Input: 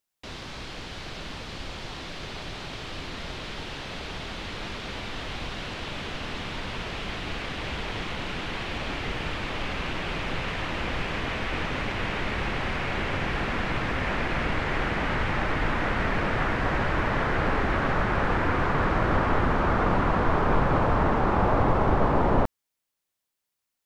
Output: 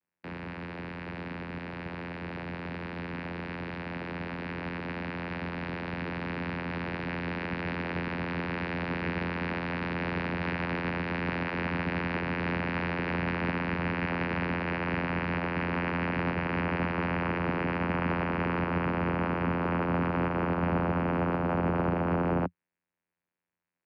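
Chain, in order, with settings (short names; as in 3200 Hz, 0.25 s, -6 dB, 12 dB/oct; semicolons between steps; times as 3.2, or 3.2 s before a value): resonant high shelf 3100 Hz -13 dB, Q 3; limiter -19 dBFS, peak gain reduction 10 dB; vocoder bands 8, saw 86.4 Hz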